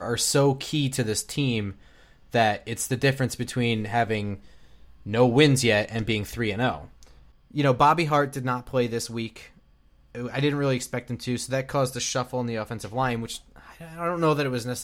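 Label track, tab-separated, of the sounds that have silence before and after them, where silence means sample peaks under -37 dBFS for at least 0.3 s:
2.340000	4.380000	sound
5.060000	7.030000	sound
7.540000	9.460000	sound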